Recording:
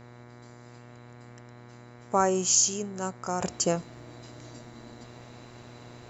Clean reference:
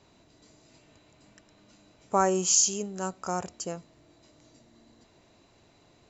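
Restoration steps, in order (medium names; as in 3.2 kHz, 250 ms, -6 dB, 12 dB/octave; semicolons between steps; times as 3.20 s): de-hum 120.7 Hz, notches 19; trim 0 dB, from 3.41 s -9.5 dB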